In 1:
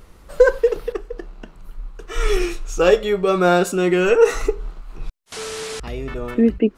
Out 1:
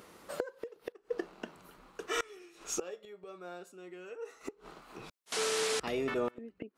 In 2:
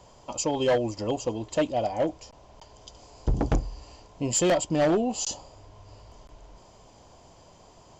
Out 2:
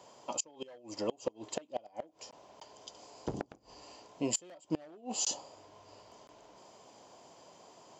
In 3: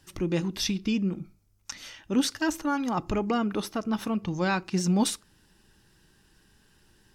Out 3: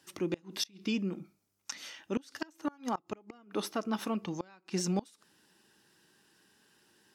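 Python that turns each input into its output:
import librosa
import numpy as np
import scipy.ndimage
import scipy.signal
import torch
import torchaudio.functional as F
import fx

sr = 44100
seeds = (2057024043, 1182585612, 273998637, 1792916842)

y = scipy.signal.sosfilt(scipy.signal.butter(2, 240.0, 'highpass', fs=sr, output='sos'), x)
y = fx.gate_flip(y, sr, shuts_db=-18.0, range_db=-28)
y = y * 10.0 ** (-2.0 / 20.0)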